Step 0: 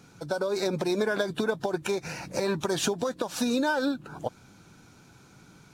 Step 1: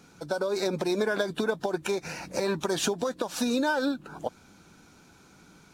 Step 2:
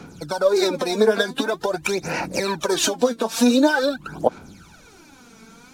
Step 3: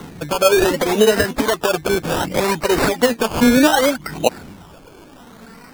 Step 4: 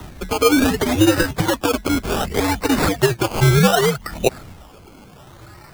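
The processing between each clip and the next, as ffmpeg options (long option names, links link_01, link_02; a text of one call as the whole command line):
ffmpeg -i in.wav -af "equalizer=frequency=120:width_type=o:width=0.38:gain=-12.5" out.wav
ffmpeg -i in.wav -filter_complex "[0:a]aphaser=in_gain=1:out_gain=1:delay=4.5:decay=0.72:speed=0.46:type=sinusoidal,acrossover=split=210|2000[link_01][link_02][link_03];[link_01]acompressor=threshold=-44dB:ratio=6[link_04];[link_04][link_02][link_03]amix=inputs=3:normalize=0,volume=5.5dB" out.wav
ffmpeg -i in.wav -filter_complex "[0:a]asplit=2[link_01][link_02];[link_02]alimiter=limit=-13.5dB:level=0:latency=1,volume=-0.5dB[link_03];[link_01][link_03]amix=inputs=2:normalize=0,acrusher=samples=18:mix=1:aa=0.000001:lfo=1:lforange=10.8:lforate=0.66" out.wav
ffmpeg -i in.wav -af "afreqshift=-110,acrusher=bits=6:mode=log:mix=0:aa=0.000001,volume=-1dB" out.wav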